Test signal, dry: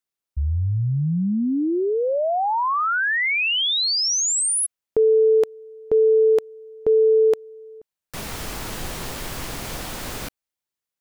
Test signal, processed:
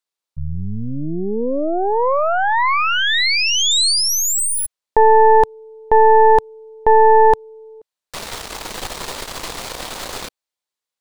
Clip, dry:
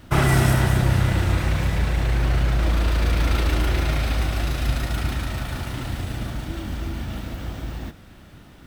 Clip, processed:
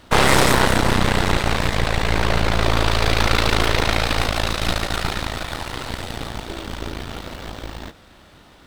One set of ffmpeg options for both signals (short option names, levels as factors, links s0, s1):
-af "aeval=exprs='0.562*(cos(1*acos(clip(val(0)/0.562,-1,1)))-cos(1*PI/2))+0.224*(cos(6*acos(clip(val(0)/0.562,-1,1)))-cos(6*PI/2))':c=same,equalizer=f=125:t=o:w=1:g=-3,equalizer=f=500:t=o:w=1:g=6,equalizer=f=1000:t=o:w=1:g=7,equalizer=f=2000:t=o:w=1:g=3,equalizer=f=4000:t=o:w=1:g=8,equalizer=f=8000:t=o:w=1:g=5,volume=0.596"